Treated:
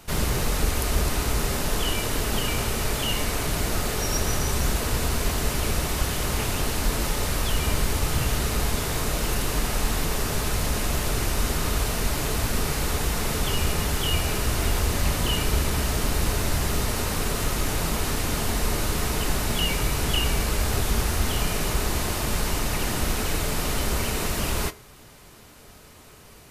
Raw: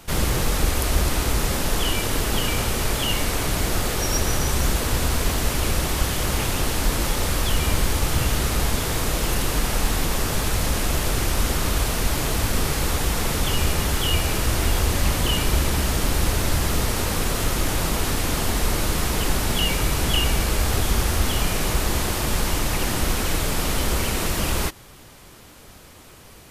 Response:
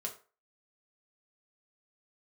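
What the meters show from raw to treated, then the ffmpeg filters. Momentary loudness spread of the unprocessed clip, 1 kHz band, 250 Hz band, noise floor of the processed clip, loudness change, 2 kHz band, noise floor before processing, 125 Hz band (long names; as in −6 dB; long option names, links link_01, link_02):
2 LU, −2.5 dB, −2.5 dB, −48 dBFS, −2.5 dB, −2.5 dB, −45 dBFS, −2.5 dB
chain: -filter_complex "[0:a]bandreject=frequency=3300:width=27,asplit=2[link_01][link_02];[1:a]atrim=start_sample=2205[link_03];[link_02][link_03]afir=irnorm=-1:irlink=0,volume=-5.5dB[link_04];[link_01][link_04]amix=inputs=2:normalize=0,volume=-5.5dB"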